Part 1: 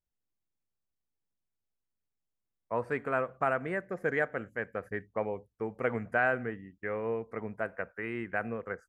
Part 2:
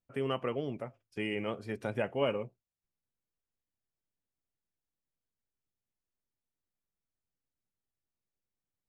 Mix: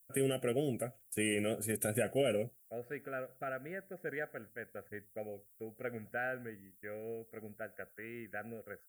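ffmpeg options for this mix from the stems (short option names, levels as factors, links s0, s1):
-filter_complex "[0:a]volume=0.316[s0];[1:a]aexciter=amount=12:drive=9.7:freq=7700,alimiter=limit=0.0668:level=0:latency=1:release=29,volume=1.26[s1];[s0][s1]amix=inputs=2:normalize=0,asuperstop=centerf=1000:order=12:qfactor=1.9"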